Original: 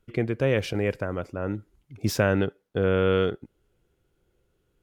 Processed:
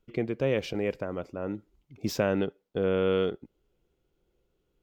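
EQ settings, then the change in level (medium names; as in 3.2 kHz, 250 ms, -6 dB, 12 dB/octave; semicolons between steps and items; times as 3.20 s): fifteen-band graphic EQ 100 Hz -9 dB, 1.6 kHz -6 dB, 10 kHz -10 dB; -2.5 dB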